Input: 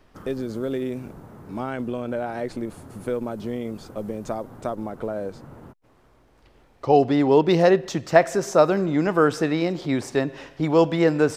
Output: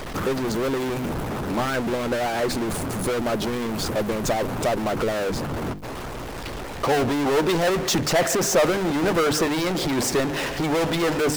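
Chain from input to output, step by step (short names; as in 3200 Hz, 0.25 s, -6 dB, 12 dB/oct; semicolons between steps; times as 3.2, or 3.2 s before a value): notches 50/100/150/200/250/300 Hz; power-law curve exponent 0.35; harmonic-percussive split harmonic -8 dB; gain -7 dB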